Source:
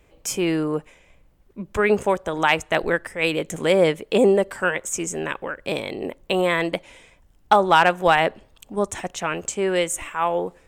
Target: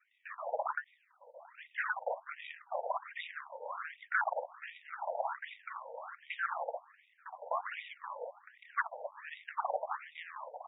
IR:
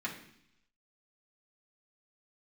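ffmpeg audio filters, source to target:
-filter_complex "[0:a]afftfilt=real='real(if(lt(b,272),68*(eq(floor(b/68),0)*3+eq(floor(b/68),1)*2+eq(floor(b/68),2)*1+eq(floor(b/68),3)*0)+mod(b,68),b),0)':imag='imag(if(lt(b,272),68*(eq(floor(b/68),0)*3+eq(floor(b/68),1)*2+eq(floor(b/68),2)*1+eq(floor(b/68),3)*0)+mod(b,68),b),0)':win_size=2048:overlap=0.75,bandreject=f=50:t=h:w=6,bandreject=f=100:t=h:w=6,bandreject=f=150:t=h:w=6,bandreject=f=200:t=h:w=6,bandreject=f=250:t=h:w=6,bandreject=f=300:t=h:w=6,flanger=delay=18.5:depth=7:speed=1.2,acompressor=threshold=0.0501:ratio=10,acrusher=samples=35:mix=1:aa=0.000001:lfo=1:lforange=56:lforate=0.89,equalizer=f=315:t=o:w=0.33:g=-4,equalizer=f=3150:t=o:w=0.33:g=-10,equalizer=f=5000:t=o:w=0.33:g=5,acrusher=bits=3:mode=log:mix=0:aa=0.000001,asplit=2[s0][s1];[s1]adelay=959,lowpass=f=930:p=1,volume=0.316,asplit=2[s2][s3];[s3]adelay=959,lowpass=f=930:p=1,volume=0.44,asplit=2[s4][s5];[s5]adelay=959,lowpass=f=930:p=1,volume=0.44,asplit=2[s6][s7];[s7]adelay=959,lowpass=f=930:p=1,volume=0.44,asplit=2[s8][s9];[s9]adelay=959,lowpass=f=930:p=1,volume=0.44[s10];[s0][s2][s4][s6][s8][s10]amix=inputs=6:normalize=0,afftfilt=real='re*between(b*sr/1024,650*pow(2700/650,0.5+0.5*sin(2*PI*1.3*pts/sr))/1.41,650*pow(2700/650,0.5+0.5*sin(2*PI*1.3*pts/sr))*1.41)':imag='im*between(b*sr/1024,650*pow(2700/650,0.5+0.5*sin(2*PI*1.3*pts/sr))/1.41,650*pow(2700/650,0.5+0.5*sin(2*PI*1.3*pts/sr))*1.41)':win_size=1024:overlap=0.75"

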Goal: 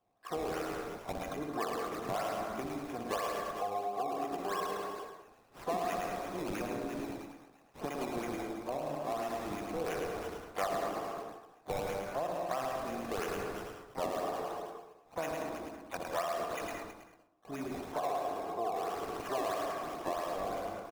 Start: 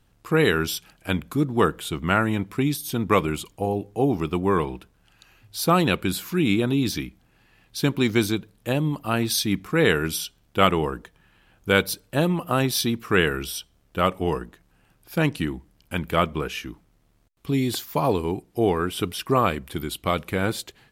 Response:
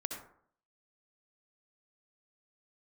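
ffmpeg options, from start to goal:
-filter_complex "[0:a]asplit=3[s0][s1][s2];[s0]bandpass=f=730:t=q:w=8,volume=1[s3];[s1]bandpass=f=1090:t=q:w=8,volume=0.501[s4];[s2]bandpass=f=2440:t=q:w=8,volume=0.355[s5];[s3][s4][s5]amix=inputs=3:normalize=0,aecho=1:1:60|132|218.4|322.1|446.5:0.631|0.398|0.251|0.158|0.1,acrossover=split=400|1000[s6][s7][s8];[s8]acrusher=samples=20:mix=1:aa=0.000001:lfo=1:lforange=20:lforate=3[s9];[s6][s7][s9]amix=inputs=3:normalize=0,asplit=2[s10][s11];[s11]asetrate=66075,aresample=44100,atempo=0.66742,volume=0.282[s12];[s10][s12]amix=inputs=2:normalize=0,asplit=2[s13][s14];[1:a]atrim=start_sample=2205,adelay=107[s15];[s14][s15]afir=irnorm=-1:irlink=0,volume=0.668[s16];[s13][s16]amix=inputs=2:normalize=0,acompressor=threshold=0.0126:ratio=3,volume=1.5"

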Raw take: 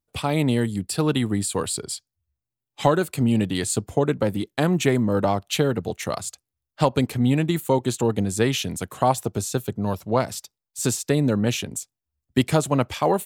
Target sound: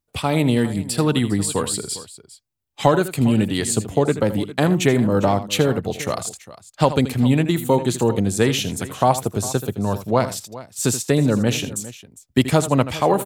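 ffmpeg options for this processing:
-af "aecho=1:1:80|404:0.224|0.141,volume=1.41"

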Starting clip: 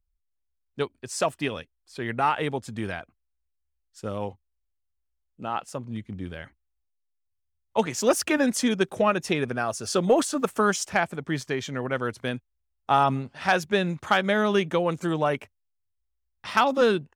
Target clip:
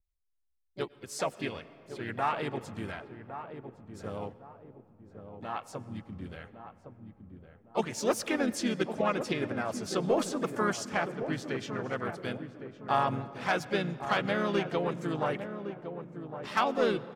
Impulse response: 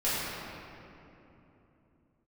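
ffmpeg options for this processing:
-filter_complex "[0:a]asplit=3[s0][s1][s2];[s1]asetrate=37084,aresample=44100,atempo=1.18921,volume=0.501[s3];[s2]asetrate=58866,aresample=44100,atempo=0.749154,volume=0.282[s4];[s0][s3][s4]amix=inputs=3:normalize=0,asplit=2[s5][s6];[s6]adelay=1110,lowpass=f=810:p=1,volume=0.398,asplit=2[s7][s8];[s8]adelay=1110,lowpass=f=810:p=1,volume=0.41,asplit=2[s9][s10];[s10]adelay=1110,lowpass=f=810:p=1,volume=0.41,asplit=2[s11][s12];[s12]adelay=1110,lowpass=f=810:p=1,volume=0.41,asplit=2[s13][s14];[s14]adelay=1110,lowpass=f=810:p=1,volume=0.41[s15];[s5][s7][s9][s11][s13][s15]amix=inputs=6:normalize=0,asplit=2[s16][s17];[1:a]atrim=start_sample=2205,adelay=98[s18];[s17][s18]afir=irnorm=-1:irlink=0,volume=0.0355[s19];[s16][s19]amix=inputs=2:normalize=0,adynamicequalizer=threshold=0.00501:dfrequency=7300:dqfactor=0.7:tfrequency=7300:tqfactor=0.7:attack=5:release=100:ratio=0.375:range=3:mode=cutabove:tftype=highshelf,volume=0.398"

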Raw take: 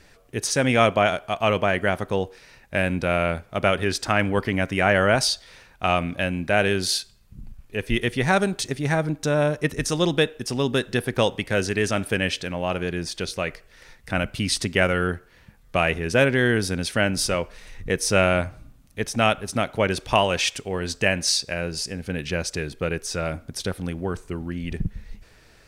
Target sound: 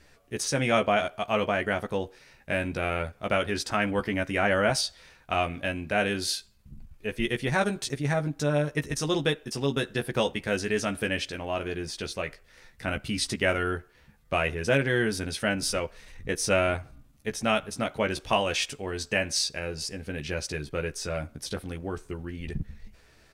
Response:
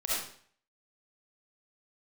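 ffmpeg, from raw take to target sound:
-filter_complex "[0:a]asplit=2[s0][s1];[s1]adelay=14,volume=0.562[s2];[s0][s2]amix=inputs=2:normalize=0,atempo=1.1,volume=0.501"

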